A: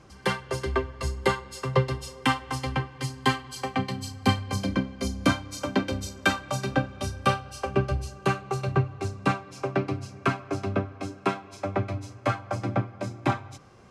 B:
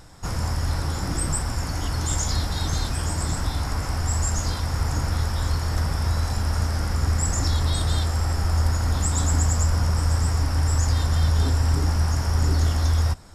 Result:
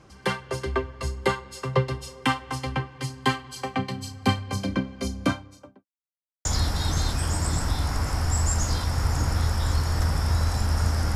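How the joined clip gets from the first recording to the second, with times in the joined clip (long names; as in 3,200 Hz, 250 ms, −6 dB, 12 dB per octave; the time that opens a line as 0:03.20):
A
0:05.08–0:05.86: fade out and dull
0:05.86–0:06.45: silence
0:06.45: continue with B from 0:02.21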